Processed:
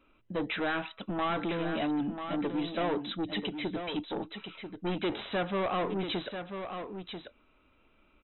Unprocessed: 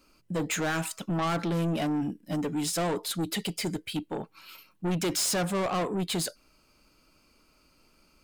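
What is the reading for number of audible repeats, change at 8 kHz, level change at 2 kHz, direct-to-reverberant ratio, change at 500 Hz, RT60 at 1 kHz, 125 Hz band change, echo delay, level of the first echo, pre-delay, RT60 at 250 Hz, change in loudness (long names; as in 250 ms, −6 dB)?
1, below −40 dB, −1.0 dB, no reverb audible, −1.0 dB, no reverb audible, −8.0 dB, 990 ms, −8.0 dB, no reverb audible, no reverb audible, −4.0 dB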